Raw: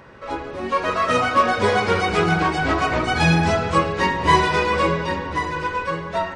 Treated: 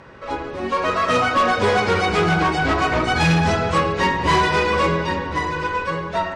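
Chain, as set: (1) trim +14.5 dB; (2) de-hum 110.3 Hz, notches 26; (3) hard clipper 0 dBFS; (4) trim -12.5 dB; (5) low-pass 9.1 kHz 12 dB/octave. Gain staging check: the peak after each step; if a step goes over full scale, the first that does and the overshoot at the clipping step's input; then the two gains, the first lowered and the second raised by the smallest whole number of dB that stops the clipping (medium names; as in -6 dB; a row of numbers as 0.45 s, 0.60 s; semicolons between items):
+11.5 dBFS, +9.5 dBFS, 0.0 dBFS, -12.5 dBFS, -12.0 dBFS; step 1, 9.5 dB; step 1 +4.5 dB, step 4 -2.5 dB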